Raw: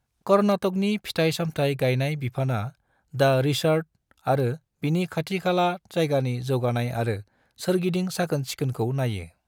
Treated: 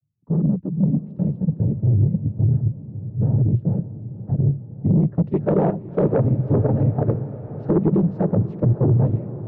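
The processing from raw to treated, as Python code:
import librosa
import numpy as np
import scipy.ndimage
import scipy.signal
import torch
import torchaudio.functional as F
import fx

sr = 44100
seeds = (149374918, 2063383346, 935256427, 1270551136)

p1 = fx.noise_vocoder(x, sr, seeds[0], bands=12)
p2 = fx.low_shelf(p1, sr, hz=210.0, db=7.5)
p3 = fx.level_steps(p2, sr, step_db=23)
p4 = p2 + F.gain(torch.from_numpy(p3), 2.0).numpy()
p5 = fx.filter_sweep_lowpass(p4, sr, from_hz=170.0, to_hz=500.0, start_s=4.69, end_s=5.32, q=0.96)
p6 = 10.0 ** (-10.0 / 20.0) * np.tanh(p5 / 10.0 ** (-10.0 / 20.0))
y = p6 + fx.echo_diffused(p6, sr, ms=544, feedback_pct=68, wet_db=-15, dry=0)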